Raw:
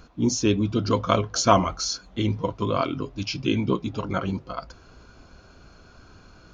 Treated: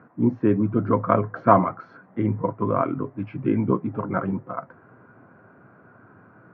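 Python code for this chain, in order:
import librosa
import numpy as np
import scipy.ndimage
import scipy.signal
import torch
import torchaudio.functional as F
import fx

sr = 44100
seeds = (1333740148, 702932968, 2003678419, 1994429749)

y = scipy.signal.sosfilt(scipy.signal.cheby1(4, 1.0, [110.0, 1900.0], 'bandpass', fs=sr, output='sos'), x)
y = F.gain(torch.from_numpy(y), 2.5).numpy()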